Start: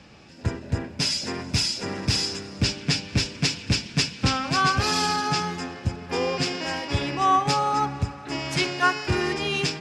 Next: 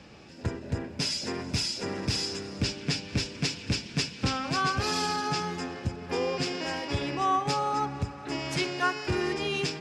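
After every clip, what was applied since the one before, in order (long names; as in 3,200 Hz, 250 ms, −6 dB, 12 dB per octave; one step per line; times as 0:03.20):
parametric band 410 Hz +3.5 dB 1.1 octaves
in parallel at +2.5 dB: downward compressor, threshold −30 dBFS, peak gain reduction 14 dB
on the sum: level −9 dB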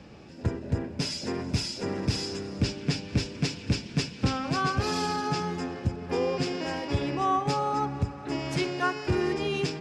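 tilt shelving filter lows +3.5 dB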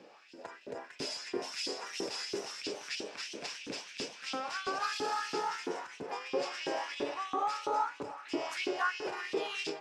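delay with pitch and tempo change per echo 478 ms, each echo +1 semitone, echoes 3, each echo −6 dB
brickwall limiter −20 dBFS, peak gain reduction 7 dB
auto-filter high-pass saw up 3 Hz 310–3,300 Hz
level −6 dB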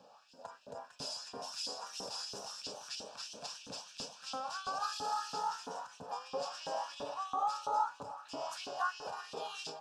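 phaser with its sweep stopped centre 860 Hz, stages 4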